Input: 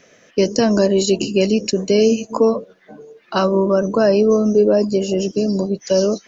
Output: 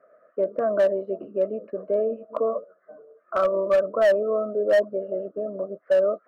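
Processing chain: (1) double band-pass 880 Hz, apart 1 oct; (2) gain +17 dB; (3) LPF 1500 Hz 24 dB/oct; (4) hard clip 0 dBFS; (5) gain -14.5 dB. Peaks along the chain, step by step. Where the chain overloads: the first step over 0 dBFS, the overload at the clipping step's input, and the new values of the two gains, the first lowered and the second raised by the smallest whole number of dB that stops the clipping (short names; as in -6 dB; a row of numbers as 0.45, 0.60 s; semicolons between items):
-9.5, +7.5, +7.5, 0.0, -14.5 dBFS; step 2, 7.5 dB; step 2 +9 dB, step 5 -6.5 dB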